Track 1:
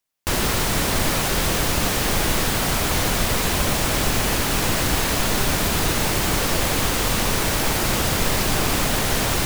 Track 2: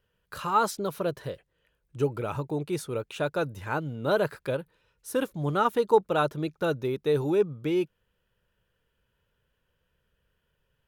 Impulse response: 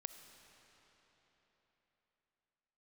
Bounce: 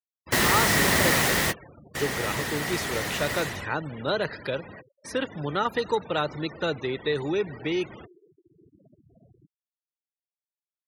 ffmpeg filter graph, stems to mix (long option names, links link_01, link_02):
-filter_complex "[0:a]highpass=91,volume=7.5dB,afade=type=out:start_time=1.16:duration=0.79:silence=0.375837,afade=type=out:start_time=3.38:duration=0.32:silence=0.298538,afade=type=in:start_time=8.07:duration=0.79:silence=0.334965,asplit=2[link_01][link_02];[link_02]volume=-12dB[link_03];[1:a]equalizer=frequency=5100:width_type=o:width=1.9:gain=11.5,acrossover=split=170|1200|5300[link_04][link_05][link_06][link_07];[link_04]acompressor=threshold=-41dB:ratio=4[link_08];[link_05]acompressor=threshold=-23dB:ratio=4[link_09];[link_06]acompressor=threshold=-31dB:ratio=4[link_10];[link_07]acompressor=threshold=-43dB:ratio=4[link_11];[link_08][link_09][link_10][link_11]amix=inputs=4:normalize=0,volume=-2.5dB,asplit=3[link_12][link_13][link_14];[link_13]volume=-8dB[link_15];[link_14]apad=whole_len=417078[link_16];[link_01][link_16]sidechaingate=range=-44dB:threshold=-58dB:ratio=16:detection=peak[link_17];[2:a]atrim=start_sample=2205[link_18];[link_03][link_15]amix=inputs=2:normalize=0[link_19];[link_19][link_18]afir=irnorm=-1:irlink=0[link_20];[link_17][link_12][link_20]amix=inputs=3:normalize=0,afftfilt=real='re*gte(hypot(re,im),0.0126)':imag='im*gte(hypot(re,im),0.0126)':win_size=1024:overlap=0.75,equalizer=frequency=1900:width_type=o:width=0.22:gain=12"